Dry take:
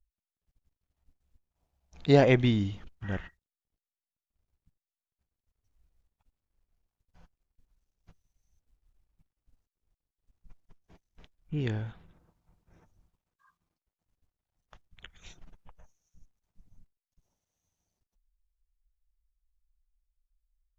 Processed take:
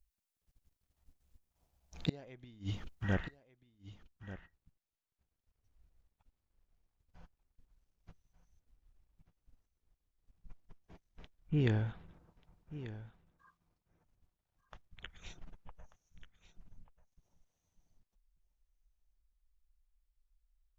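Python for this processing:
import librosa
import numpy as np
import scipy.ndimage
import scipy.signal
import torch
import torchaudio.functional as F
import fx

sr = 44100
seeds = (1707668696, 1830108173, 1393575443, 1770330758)

y = fx.high_shelf(x, sr, hz=4900.0, db=fx.steps((0.0, 5.5), (3.13, -6.5)))
y = fx.gate_flip(y, sr, shuts_db=-19.0, range_db=-33)
y = y + 10.0 ** (-14.5 / 20.0) * np.pad(y, (int(1188 * sr / 1000.0), 0))[:len(y)]
y = F.gain(torch.from_numpy(y), 1.0).numpy()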